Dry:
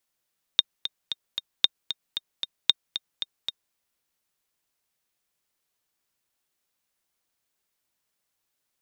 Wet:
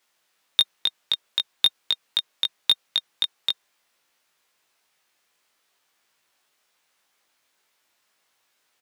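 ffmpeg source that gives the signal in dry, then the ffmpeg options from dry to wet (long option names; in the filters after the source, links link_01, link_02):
-f lavfi -i "aevalsrc='pow(10,(-3.5-11.5*gte(mod(t,4*60/228),60/228))/20)*sin(2*PI*3680*mod(t,60/228))*exp(-6.91*mod(t,60/228)/0.03)':duration=3.15:sample_rate=44100"
-filter_complex "[0:a]asplit=2[link_01][link_02];[link_02]highpass=frequency=720:poles=1,volume=19dB,asoftclip=type=tanh:threshold=-3.5dB[link_03];[link_01][link_03]amix=inputs=2:normalize=0,lowpass=frequency=3300:poles=1,volume=-6dB,asplit=2[link_04][link_05];[link_05]adelay=19,volume=-2.5dB[link_06];[link_04][link_06]amix=inputs=2:normalize=0"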